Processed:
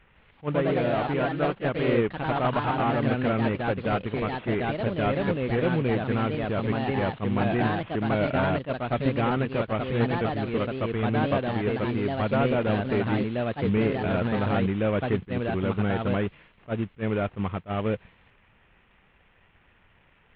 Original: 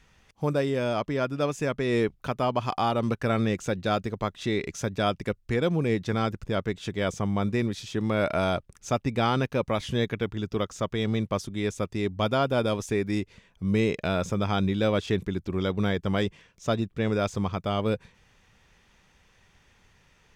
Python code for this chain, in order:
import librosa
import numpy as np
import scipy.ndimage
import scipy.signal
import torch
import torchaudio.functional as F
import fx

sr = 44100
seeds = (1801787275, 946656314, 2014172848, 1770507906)

y = fx.cvsd(x, sr, bps=16000)
y = fx.echo_pitch(y, sr, ms=162, semitones=2, count=2, db_per_echo=-3.0)
y = fx.attack_slew(y, sr, db_per_s=410.0)